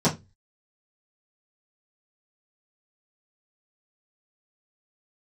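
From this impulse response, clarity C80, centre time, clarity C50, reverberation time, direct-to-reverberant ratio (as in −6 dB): 23.5 dB, 16 ms, 14.5 dB, 0.20 s, −10.0 dB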